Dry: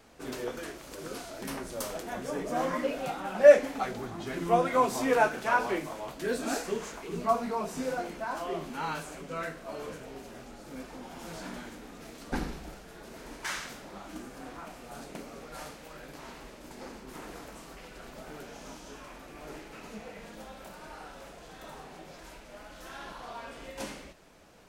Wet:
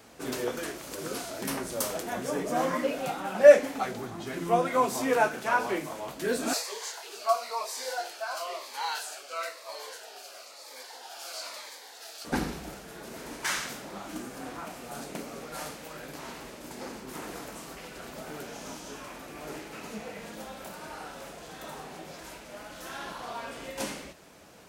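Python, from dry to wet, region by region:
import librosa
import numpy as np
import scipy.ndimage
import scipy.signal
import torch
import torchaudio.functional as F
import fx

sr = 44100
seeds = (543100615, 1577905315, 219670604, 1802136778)

y = fx.chain(x, sr, fx.highpass(hz=590.0, slope=24),
    fx.peak_eq(hz=4500.0, db=8.5, octaves=0.49),
    fx.notch_cascade(direction='falling', hz=1.0), at=(6.53, 12.25))
y = scipy.signal.sosfilt(scipy.signal.butter(2, 72.0, 'highpass', fs=sr, output='sos'), y)
y = fx.high_shelf(y, sr, hz=6700.0, db=5.5)
y = fx.rider(y, sr, range_db=3, speed_s=2.0)
y = y * 10.0 ** (1.0 / 20.0)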